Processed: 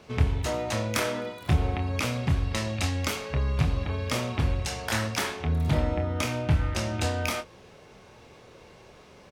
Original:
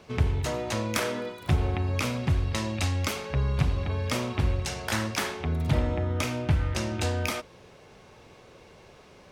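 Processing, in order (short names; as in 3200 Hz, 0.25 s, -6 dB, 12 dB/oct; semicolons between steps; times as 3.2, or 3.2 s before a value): doubler 26 ms -7 dB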